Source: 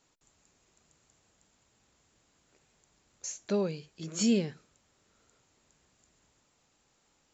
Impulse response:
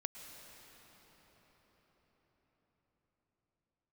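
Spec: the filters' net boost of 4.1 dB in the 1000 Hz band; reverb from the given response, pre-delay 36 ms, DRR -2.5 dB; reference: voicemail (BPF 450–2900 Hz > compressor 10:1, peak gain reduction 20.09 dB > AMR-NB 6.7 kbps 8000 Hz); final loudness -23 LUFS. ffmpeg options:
-filter_complex "[0:a]equalizer=f=1k:t=o:g=5.5,asplit=2[a][b];[1:a]atrim=start_sample=2205,adelay=36[c];[b][c]afir=irnorm=-1:irlink=0,volume=4dB[d];[a][d]amix=inputs=2:normalize=0,highpass=450,lowpass=2.9k,acompressor=threshold=-45dB:ratio=10,volume=29dB" -ar 8000 -c:a libopencore_amrnb -b:a 6700

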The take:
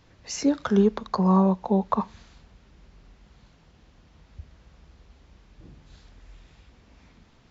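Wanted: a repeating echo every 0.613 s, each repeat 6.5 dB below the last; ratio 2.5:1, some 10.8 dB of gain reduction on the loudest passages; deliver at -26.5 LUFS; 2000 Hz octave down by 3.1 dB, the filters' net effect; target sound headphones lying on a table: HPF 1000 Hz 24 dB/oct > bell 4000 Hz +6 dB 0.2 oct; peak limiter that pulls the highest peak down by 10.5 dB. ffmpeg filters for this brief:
-af "equalizer=f=2k:t=o:g=-4.5,acompressor=threshold=-32dB:ratio=2.5,alimiter=level_in=3.5dB:limit=-24dB:level=0:latency=1,volume=-3.5dB,highpass=f=1k:w=0.5412,highpass=f=1k:w=1.3066,equalizer=f=4k:t=o:w=0.2:g=6,aecho=1:1:613|1226|1839|2452|3065|3678:0.473|0.222|0.105|0.0491|0.0231|0.0109,volume=18dB"

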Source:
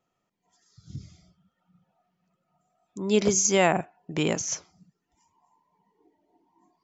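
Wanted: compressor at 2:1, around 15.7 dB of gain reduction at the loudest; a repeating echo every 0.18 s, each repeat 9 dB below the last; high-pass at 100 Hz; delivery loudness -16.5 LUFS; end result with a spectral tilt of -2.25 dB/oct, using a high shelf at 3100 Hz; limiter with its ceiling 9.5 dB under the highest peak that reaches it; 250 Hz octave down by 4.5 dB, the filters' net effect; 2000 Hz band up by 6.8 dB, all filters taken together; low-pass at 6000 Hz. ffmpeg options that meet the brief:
-af "highpass=100,lowpass=6k,equalizer=f=250:t=o:g=-6.5,equalizer=f=2k:t=o:g=5,highshelf=f=3.1k:g=8.5,acompressor=threshold=-44dB:ratio=2,alimiter=level_in=4dB:limit=-24dB:level=0:latency=1,volume=-4dB,aecho=1:1:180|360|540|720:0.355|0.124|0.0435|0.0152,volume=24dB"

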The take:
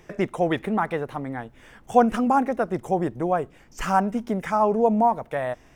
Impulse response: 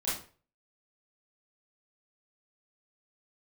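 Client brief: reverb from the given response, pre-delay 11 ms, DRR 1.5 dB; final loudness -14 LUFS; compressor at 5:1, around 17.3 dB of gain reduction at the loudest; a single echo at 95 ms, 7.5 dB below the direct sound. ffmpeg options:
-filter_complex "[0:a]acompressor=threshold=-31dB:ratio=5,aecho=1:1:95:0.422,asplit=2[a][b];[1:a]atrim=start_sample=2205,adelay=11[c];[b][c]afir=irnorm=-1:irlink=0,volume=-7.5dB[d];[a][d]amix=inputs=2:normalize=0,volume=17.5dB"

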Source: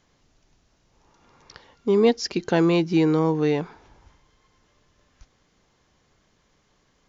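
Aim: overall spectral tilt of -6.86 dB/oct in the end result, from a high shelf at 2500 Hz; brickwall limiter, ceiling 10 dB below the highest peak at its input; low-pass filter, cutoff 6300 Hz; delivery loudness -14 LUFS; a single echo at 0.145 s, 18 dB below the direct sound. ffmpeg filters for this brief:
-af "lowpass=6.3k,highshelf=f=2.5k:g=-7.5,alimiter=limit=-18.5dB:level=0:latency=1,aecho=1:1:145:0.126,volume=13.5dB"

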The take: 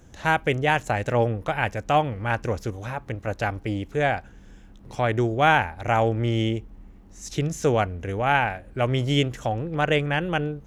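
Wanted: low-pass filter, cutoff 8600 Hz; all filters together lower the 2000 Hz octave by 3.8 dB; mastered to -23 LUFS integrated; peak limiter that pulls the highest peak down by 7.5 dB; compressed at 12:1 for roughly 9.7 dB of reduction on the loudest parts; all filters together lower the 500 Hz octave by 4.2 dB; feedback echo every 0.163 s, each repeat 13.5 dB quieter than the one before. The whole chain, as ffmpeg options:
-af "lowpass=8.6k,equalizer=f=500:t=o:g=-5,equalizer=f=2k:t=o:g=-5,acompressor=threshold=-27dB:ratio=12,alimiter=limit=-23.5dB:level=0:latency=1,aecho=1:1:163|326:0.211|0.0444,volume=11.5dB"

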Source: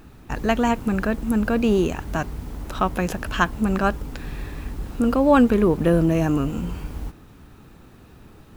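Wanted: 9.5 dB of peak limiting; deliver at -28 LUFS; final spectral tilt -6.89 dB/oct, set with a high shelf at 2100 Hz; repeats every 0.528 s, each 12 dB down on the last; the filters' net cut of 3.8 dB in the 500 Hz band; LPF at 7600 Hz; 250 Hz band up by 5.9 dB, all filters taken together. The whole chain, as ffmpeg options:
-af "lowpass=7.6k,equalizer=f=250:t=o:g=9,equalizer=f=500:t=o:g=-8,highshelf=f=2.1k:g=-7.5,alimiter=limit=-10.5dB:level=0:latency=1,aecho=1:1:528|1056|1584:0.251|0.0628|0.0157,volume=-7dB"

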